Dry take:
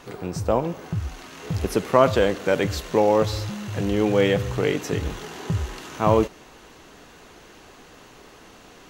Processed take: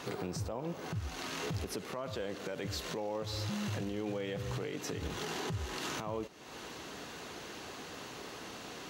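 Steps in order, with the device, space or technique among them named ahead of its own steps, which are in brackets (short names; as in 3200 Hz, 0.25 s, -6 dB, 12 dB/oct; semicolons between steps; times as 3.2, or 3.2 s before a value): broadcast voice chain (HPF 84 Hz; de-esser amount 55%; compressor 4:1, threshold -35 dBFS, peak gain reduction 20.5 dB; bell 4300 Hz +3.5 dB 0.89 oct; limiter -29.5 dBFS, peak gain reduction 10.5 dB); gain +1.5 dB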